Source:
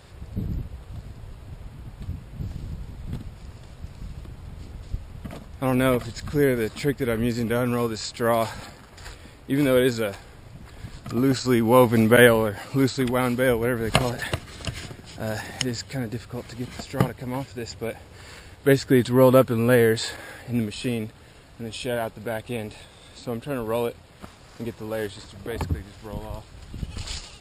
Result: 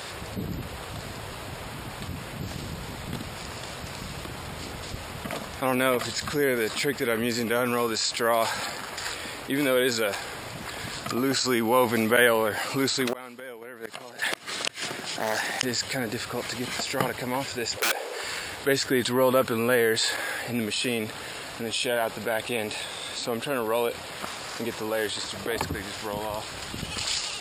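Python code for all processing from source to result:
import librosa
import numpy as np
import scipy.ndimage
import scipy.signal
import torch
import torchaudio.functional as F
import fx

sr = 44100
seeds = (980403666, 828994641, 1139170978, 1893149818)

y = fx.chain(x, sr, fx.highpass(hz=140.0, slope=12),
    fx.gate_flip(shuts_db=-16.0, range_db=-34),
    fx.doppler_dist(depth_ms=0.47), at=(13.07, 15.63))
y = fx.chain(y, sr, fx.highpass_res(hz=460.0, q=3.1),
    fx.overflow_wrap(gain_db=20.5), at=(17.77, 18.24))
y = fx.highpass(y, sr, hz=730.0, slope=6)
y = fx.env_flatten(y, sr, amount_pct=50)
y = y * 10.0 ** (-3.0 / 20.0)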